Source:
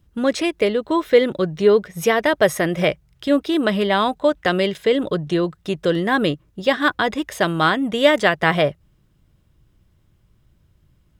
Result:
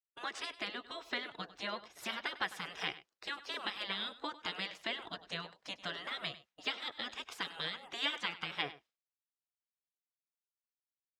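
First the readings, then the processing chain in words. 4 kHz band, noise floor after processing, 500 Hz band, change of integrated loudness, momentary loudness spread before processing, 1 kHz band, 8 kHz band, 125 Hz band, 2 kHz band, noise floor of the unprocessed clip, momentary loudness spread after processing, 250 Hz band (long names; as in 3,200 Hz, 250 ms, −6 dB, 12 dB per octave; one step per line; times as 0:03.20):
−11.0 dB, below −85 dBFS, −31.5 dB, −20.5 dB, 6 LU, −20.5 dB, −18.5 dB, −28.5 dB, −17.0 dB, −60 dBFS, 6 LU, −30.0 dB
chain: spectral magnitudes quantised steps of 15 dB
three-way crossover with the lows and the highs turned down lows −20 dB, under 370 Hz, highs −18 dB, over 6,400 Hz
downward compressor 2 to 1, threshold −24 dBFS, peak gain reduction 8 dB
gate on every frequency bin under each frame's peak −15 dB weak
downward expander −58 dBFS
on a send: single-tap delay 99 ms −16.5 dB
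on the sum: level −3.5 dB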